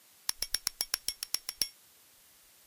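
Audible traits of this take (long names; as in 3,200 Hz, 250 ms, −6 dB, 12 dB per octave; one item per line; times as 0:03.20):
a buzz of ramps at a fixed pitch in blocks of 8 samples
tremolo saw up 0.89 Hz, depth 55%
a quantiser's noise floor 10 bits, dither triangular
Ogg Vorbis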